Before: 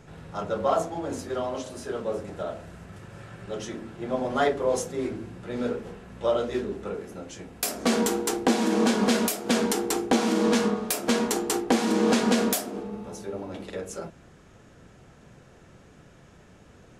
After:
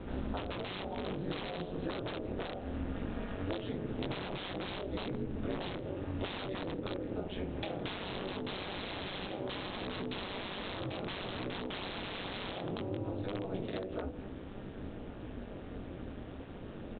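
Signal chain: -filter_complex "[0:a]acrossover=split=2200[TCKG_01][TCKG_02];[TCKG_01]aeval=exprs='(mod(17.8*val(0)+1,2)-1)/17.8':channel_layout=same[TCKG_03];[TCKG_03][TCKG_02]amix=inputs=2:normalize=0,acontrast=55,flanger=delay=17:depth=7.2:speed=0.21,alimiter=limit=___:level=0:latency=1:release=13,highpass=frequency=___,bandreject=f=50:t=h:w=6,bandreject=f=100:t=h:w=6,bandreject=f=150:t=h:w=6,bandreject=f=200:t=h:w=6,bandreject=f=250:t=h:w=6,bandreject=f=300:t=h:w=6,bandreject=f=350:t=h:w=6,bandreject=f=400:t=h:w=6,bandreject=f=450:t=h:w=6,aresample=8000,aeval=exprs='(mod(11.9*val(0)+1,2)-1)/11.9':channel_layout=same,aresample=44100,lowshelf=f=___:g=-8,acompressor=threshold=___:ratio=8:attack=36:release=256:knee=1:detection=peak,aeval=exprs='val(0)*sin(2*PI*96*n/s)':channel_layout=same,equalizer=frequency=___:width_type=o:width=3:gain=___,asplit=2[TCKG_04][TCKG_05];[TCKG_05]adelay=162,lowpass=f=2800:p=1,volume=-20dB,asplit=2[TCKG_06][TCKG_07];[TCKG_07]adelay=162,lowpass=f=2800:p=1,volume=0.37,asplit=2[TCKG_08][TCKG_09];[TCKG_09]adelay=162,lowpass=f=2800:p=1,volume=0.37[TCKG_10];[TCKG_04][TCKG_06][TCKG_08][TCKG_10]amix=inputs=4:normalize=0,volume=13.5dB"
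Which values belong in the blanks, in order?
-15.5dB, 75, 99, -43dB, 1700, -12.5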